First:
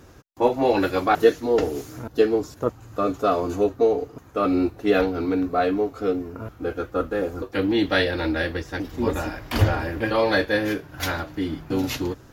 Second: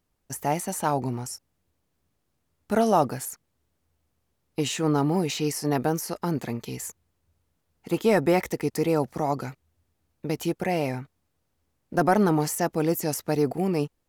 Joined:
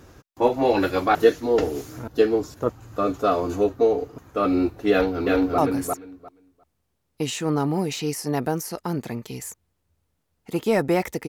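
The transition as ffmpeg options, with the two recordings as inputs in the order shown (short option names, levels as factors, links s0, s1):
-filter_complex "[0:a]apad=whole_dur=11.28,atrim=end=11.28,atrim=end=5.582[s0];[1:a]atrim=start=2.958:end=8.66[s1];[s0][s1]acrossfade=d=0.004:c1=hsin:c2=hsin,asplit=2[s2][s3];[s3]afade=t=in:st=4.91:d=0.01,afade=t=out:st=5.58:d=0.01,aecho=0:1:350|700|1050:0.749894|0.112484|0.0168726[s4];[s2][s4]amix=inputs=2:normalize=0"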